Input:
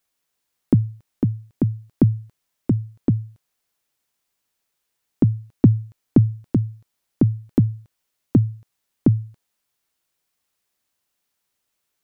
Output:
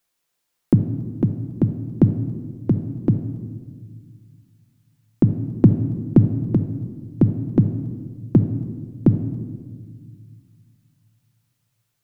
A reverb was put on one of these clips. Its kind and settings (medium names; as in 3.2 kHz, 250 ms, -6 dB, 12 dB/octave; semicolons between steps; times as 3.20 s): simulated room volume 2000 m³, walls mixed, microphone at 0.83 m; trim +1 dB